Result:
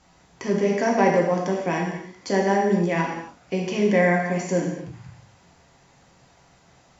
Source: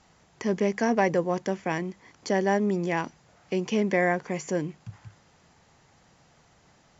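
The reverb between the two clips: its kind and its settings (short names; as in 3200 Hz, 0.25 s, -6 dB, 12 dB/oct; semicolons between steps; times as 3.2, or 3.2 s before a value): non-linear reverb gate 0.32 s falling, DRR -2 dB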